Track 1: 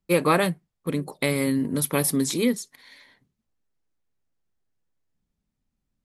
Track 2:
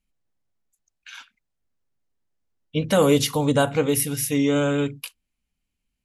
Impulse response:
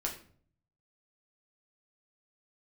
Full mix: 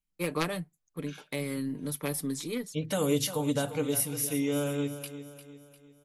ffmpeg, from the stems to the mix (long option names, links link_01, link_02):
-filter_complex "[0:a]aeval=exprs='0.501*(cos(1*acos(clip(val(0)/0.501,-1,1)))-cos(1*PI/2))+0.178*(cos(3*acos(clip(val(0)/0.501,-1,1)))-cos(3*PI/2))+0.0355*(cos(4*acos(clip(val(0)/0.501,-1,1)))-cos(4*PI/2))+0.0447*(cos(5*acos(clip(val(0)/0.501,-1,1)))-cos(5*PI/2))+0.02*(cos(6*acos(clip(val(0)/0.501,-1,1)))-cos(6*PI/2))':channel_layout=same,adelay=100,volume=-2.5dB[link_01];[1:a]highshelf=frequency=6200:gain=7.5,volume=-11dB,asplit=3[link_02][link_03][link_04];[link_03]volume=-12.5dB[link_05];[link_04]apad=whole_len=271156[link_06];[link_01][link_06]sidechaincompress=threshold=-48dB:ratio=8:attack=5.6:release=400[link_07];[link_05]aecho=0:1:350|700|1050|1400|1750|2100:1|0.44|0.194|0.0852|0.0375|0.0165[link_08];[link_07][link_02][link_08]amix=inputs=3:normalize=0,aecho=1:1:6.7:0.39,acrossover=split=420|3000[link_09][link_10][link_11];[link_10]acompressor=threshold=-29dB:ratio=6[link_12];[link_09][link_12][link_11]amix=inputs=3:normalize=0"